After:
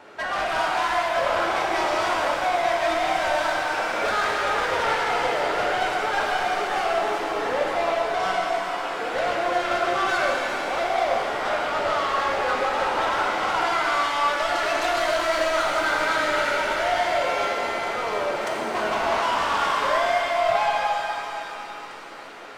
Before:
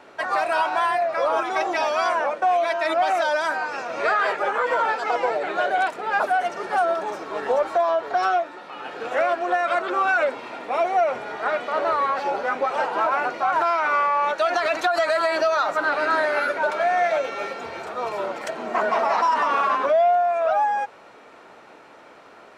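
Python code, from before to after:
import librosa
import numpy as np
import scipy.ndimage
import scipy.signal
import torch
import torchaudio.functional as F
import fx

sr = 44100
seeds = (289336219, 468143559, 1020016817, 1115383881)

y = fx.echo_wet_highpass(x, sr, ms=1146, feedback_pct=80, hz=2400.0, wet_db=-18.5)
y = 10.0 ** (-24.5 / 20.0) * np.tanh(y / 10.0 ** (-24.5 / 20.0))
y = fx.rev_shimmer(y, sr, seeds[0], rt60_s=3.0, semitones=7, shimmer_db=-8, drr_db=-2.5)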